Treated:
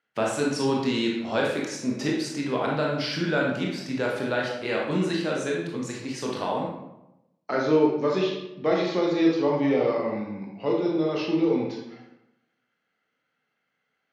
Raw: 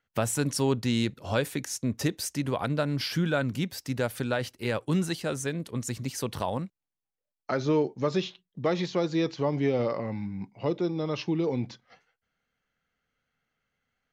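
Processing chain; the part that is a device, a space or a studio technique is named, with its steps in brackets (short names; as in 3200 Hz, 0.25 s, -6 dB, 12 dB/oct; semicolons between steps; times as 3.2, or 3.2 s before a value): supermarket ceiling speaker (BPF 220–5400 Hz; reverb RT60 0.90 s, pre-delay 21 ms, DRR -3 dB)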